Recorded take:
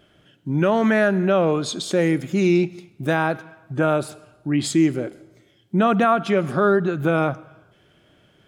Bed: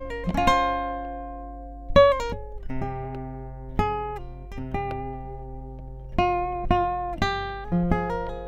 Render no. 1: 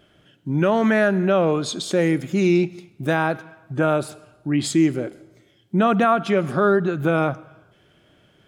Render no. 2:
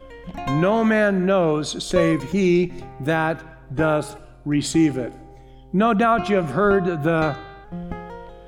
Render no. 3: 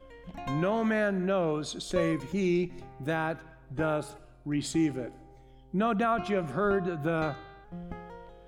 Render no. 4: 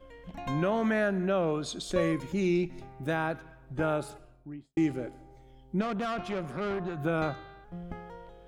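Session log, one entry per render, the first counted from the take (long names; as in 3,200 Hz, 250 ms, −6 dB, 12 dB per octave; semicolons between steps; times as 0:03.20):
no processing that can be heard
mix in bed −8.5 dB
level −9.5 dB
0:04.10–0:04.77: fade out and dull; 0:05.81–0:06.97: tube saturation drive 28 dB, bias 0.55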